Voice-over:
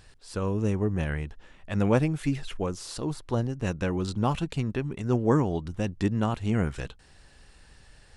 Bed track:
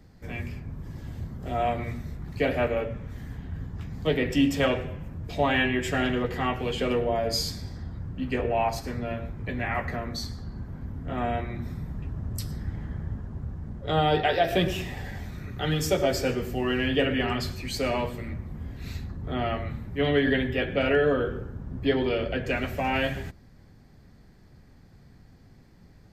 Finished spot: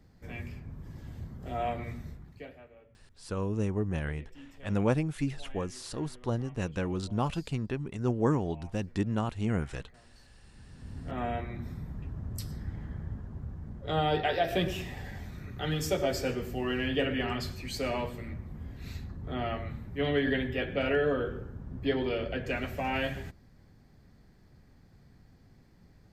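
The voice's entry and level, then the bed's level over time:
2.95 s, -4.0 dB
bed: 2.09 s -6 dB
2.65 s -29 dB
10.26 s -29 dB
10.97 s -5 dB

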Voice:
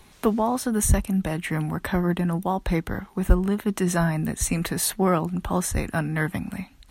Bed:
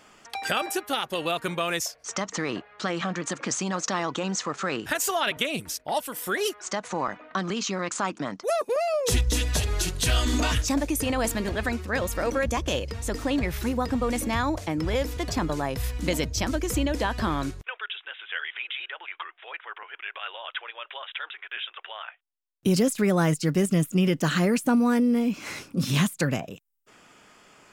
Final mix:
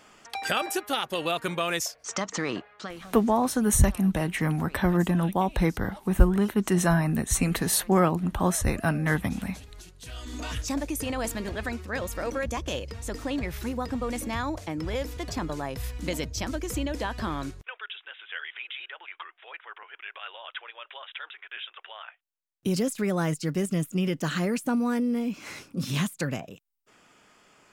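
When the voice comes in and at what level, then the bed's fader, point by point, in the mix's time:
2.90 s, 0.0 dB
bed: 2.65 s -0.5 dB
3.18 s -21 dB
9.98 s -21 dB
10.71 s -4.5 dB

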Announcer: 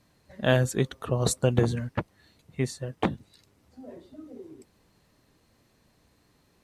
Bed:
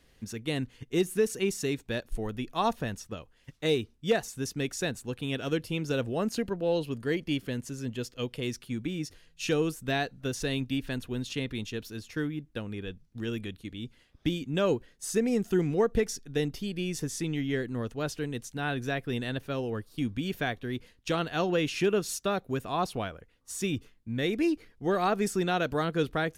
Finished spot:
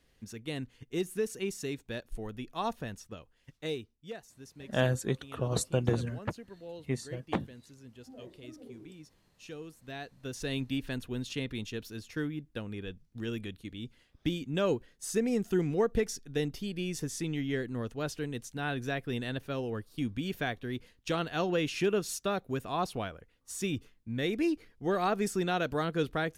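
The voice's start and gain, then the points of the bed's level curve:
4.30 s, -5.5 dB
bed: 3.56 s -6 dB
4.14 s -17 dB
9.73 s -17 dB
10.57 s -2.5 dB

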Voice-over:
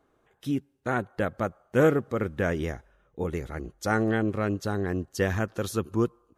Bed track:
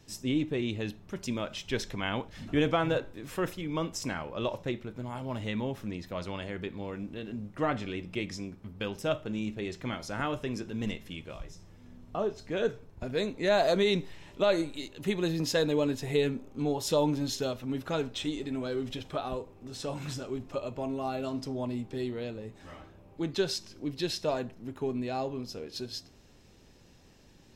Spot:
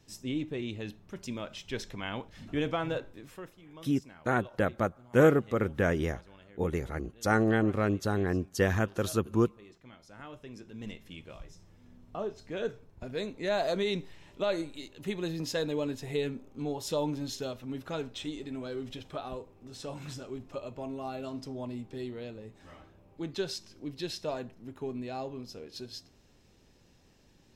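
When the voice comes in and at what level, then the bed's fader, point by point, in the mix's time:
3.40 s, -0.5 dB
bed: 3.19 s -4.5 dB
3.53 s -18 dB
9.91 s -18 dB
11.2 s -4.5 dB

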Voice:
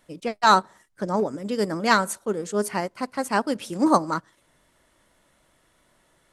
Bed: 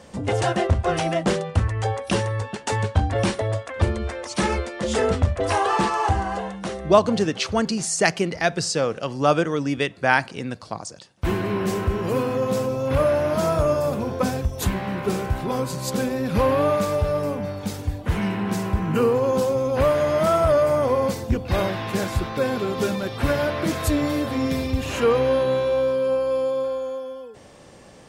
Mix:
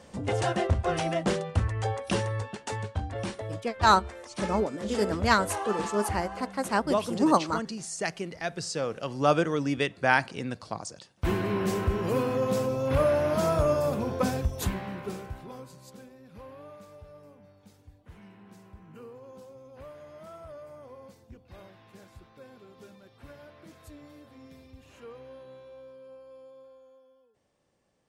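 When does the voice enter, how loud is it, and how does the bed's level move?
3.40 s, -3.5 dB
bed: 2.38 s -5.5 dB
2.91 s -12 dB
8.38 s -12 dB
9.3 s -4 dB
14.5 s -4 dB
16.18 s -27 dB

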